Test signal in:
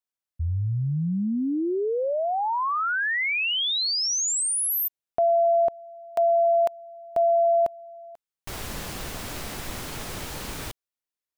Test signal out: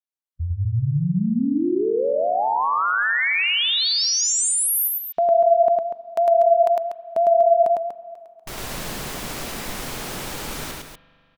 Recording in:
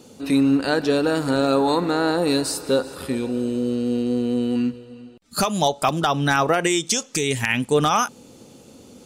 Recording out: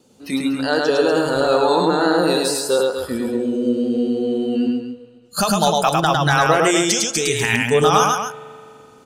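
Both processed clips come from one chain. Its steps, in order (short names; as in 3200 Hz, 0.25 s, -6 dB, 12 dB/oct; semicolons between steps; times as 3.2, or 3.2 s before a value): vibrato 5 Hz 44 cents; spectral noise reduction 11 dB; loudspeakers at several distances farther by 36 m -2 dB, 83 m -8 dB; spring tank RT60 2.7 s, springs 41 ms, chirp 70 ms, DRR 17.5 dB; gain +2 dB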